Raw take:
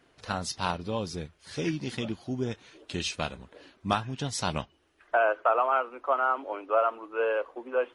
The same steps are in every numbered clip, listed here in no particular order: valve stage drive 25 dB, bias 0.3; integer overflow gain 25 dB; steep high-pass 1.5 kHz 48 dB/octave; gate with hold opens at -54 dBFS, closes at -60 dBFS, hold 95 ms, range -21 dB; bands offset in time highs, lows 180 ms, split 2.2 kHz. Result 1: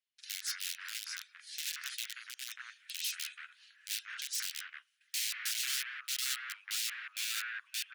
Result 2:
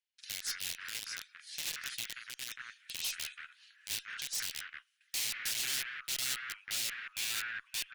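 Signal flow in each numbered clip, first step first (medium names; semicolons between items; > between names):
integer overflow > valve stage > bands offset in time > gate with hold > steep high-pass; integer overflow > bands offset in time > gate with hold > steep high-pass > valve stage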